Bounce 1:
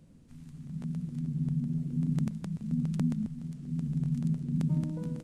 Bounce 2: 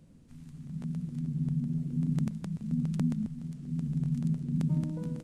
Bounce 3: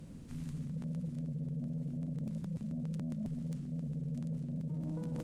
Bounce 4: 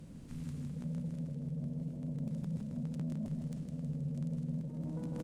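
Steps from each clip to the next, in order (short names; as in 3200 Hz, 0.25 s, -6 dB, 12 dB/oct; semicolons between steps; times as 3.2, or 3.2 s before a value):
nothing audible
limiter -25.5 dBFS, peak gain reduction 8 dB; reverse; compressor 16:1, threshold -41 dBFS, peak gain reduction 13.5 dB; reverse; added harmonics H 5 -14 dB, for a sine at -31 dBFS; gain +2 dB
in parallel at -12 dB: soft clip -37 dBFS, distortion -17 dB; on the sum: feedback echo 0.159 s, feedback 58%, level -5.5 dB; gain -3 dB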